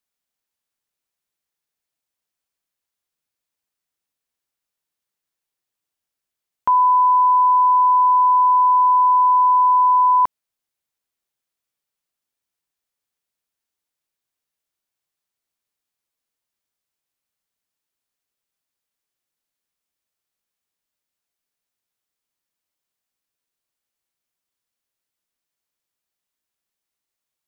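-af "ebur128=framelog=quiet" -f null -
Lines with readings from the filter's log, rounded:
Integrated loudness:
  I:         -14.4 LUFS
  Threshold: -24.5 LUFS
Loudness range:
  LRA:         9.6 LU
  Threshold: -36.7 LUFS
  LRA low:   -23.6 LUFS
  LRA high:  -14.0 LUFS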